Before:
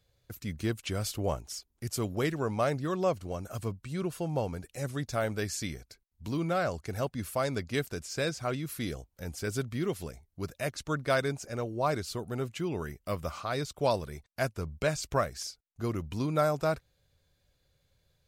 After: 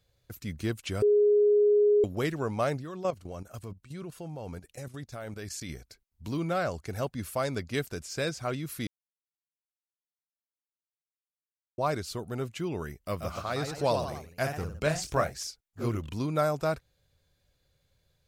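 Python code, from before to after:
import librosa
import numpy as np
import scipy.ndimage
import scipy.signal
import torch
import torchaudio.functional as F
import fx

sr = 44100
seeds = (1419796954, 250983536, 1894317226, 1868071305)

y = fx.level_steps(x, sr, step_db=13, at=(2.77, 5.69))
y = fx.echo_pitch(y, sr, ms=136, semitones=1, count=3, db_per_echo=-6.0, at=(13.03, 16.13))
y = fx.edit(y, sr, fx.bleep(start_s=1.02, length_s=1.02, hz=415.0, db=-18.5),
    fx.silence(start_s=8.87, length_s=2.91), tone=tone)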